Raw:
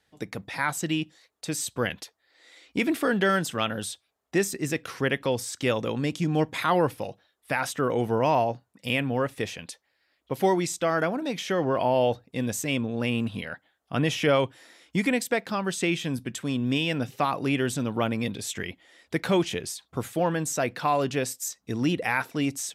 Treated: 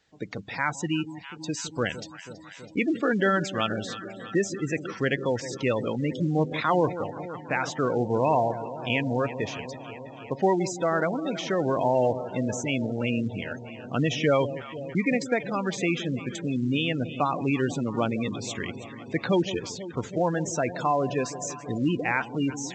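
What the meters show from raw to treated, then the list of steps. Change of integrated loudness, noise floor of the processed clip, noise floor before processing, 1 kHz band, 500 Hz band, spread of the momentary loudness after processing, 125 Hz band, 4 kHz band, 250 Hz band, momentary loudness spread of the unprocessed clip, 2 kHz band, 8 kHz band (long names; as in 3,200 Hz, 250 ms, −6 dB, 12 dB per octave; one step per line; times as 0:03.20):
0.0 dB, −44 dBFS, −73 dBFS, 0.0 dB, +0.5 dB, 12 LU, +0.5 dB, −2.5 dB, +0.5 dB, 10 LU, −0.5 dB, −4.0 dB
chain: delay that swaps between a low-pass and a high-pass 163 ms, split 860 Hz, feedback 86%, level −12.5 dB
gate on every frequency bin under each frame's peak −20 dB strong
A-law companding 128 kbit/s 16,000 Hz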